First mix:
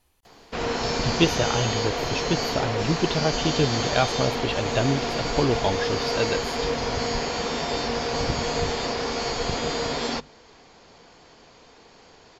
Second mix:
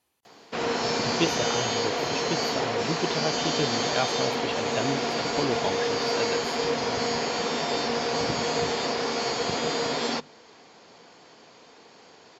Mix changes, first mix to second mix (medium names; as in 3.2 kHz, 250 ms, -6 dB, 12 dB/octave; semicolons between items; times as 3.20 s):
speech -5.0 dB; master: add high-pass 160 Hz 12 dB/octave